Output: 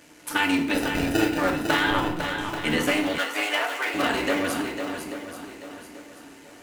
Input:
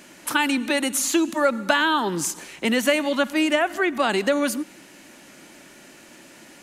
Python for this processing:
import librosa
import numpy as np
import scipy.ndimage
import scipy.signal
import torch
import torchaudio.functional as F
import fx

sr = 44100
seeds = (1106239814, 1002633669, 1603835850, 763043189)

y = fx.cycle_switch(x, sr, every=3, mode='muted')
y = fx.sample_hold(y, sr, seeds[0], rate_hz=1100.0, jitter_pct=0, at=(0.74, 1.38))
y = fx.lpc_vocoder(y, sr, seeds[1], excitation='pitch_kept', order=10, at=(1.9, 2.38))
y = fx.echo_swing(y, sr, ms=835, ratio=1.5, feedback_pct=34, wet_db=-7)
y = fx.rev_fdn(y, sr, rt60_s=0.6, lf_ratio=1.2, hf_ratio=0.75, size_ms=20.0, drr_db=1.5)
y = fx.dynamic_eq(y, sr, hz=2400.0, q=1.0, threshold_db=-32.0, ratio=4.0, max_db=4)
y = fx.highpass(y, sr, hz=640.0, slope=12, at=(3.18, 3.94))
y = F.gain(torch.from_numpy(y), -5.5).numpy()